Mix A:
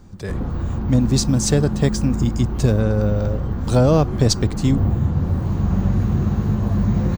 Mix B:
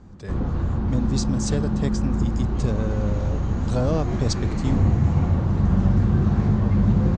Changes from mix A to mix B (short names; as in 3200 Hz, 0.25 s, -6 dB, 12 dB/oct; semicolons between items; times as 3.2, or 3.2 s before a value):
speech -8.5 dB; second sound: entry -2.85 s; master: add steep low-pass 8300 Hz 48 dB/oct